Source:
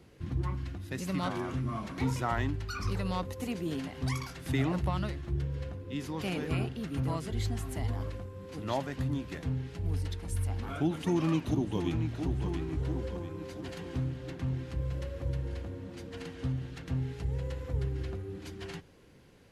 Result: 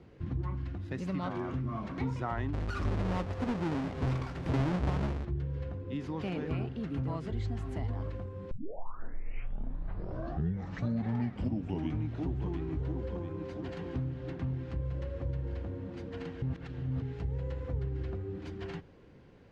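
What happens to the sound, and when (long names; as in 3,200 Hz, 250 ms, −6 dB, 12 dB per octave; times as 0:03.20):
0:02.53–0:05.25: each half-wave held at its own peak
0:08.51: tape start 3.64 s
0:16.42–0:17.02: reverse
whole clip: low-pass filter 5,900 Hz 12 dB per octave; high-shelf EQ 2,600 Hz −11.5 dB; downward compressor 2 to 1, threshold −36 dBFS; level +2.5 dB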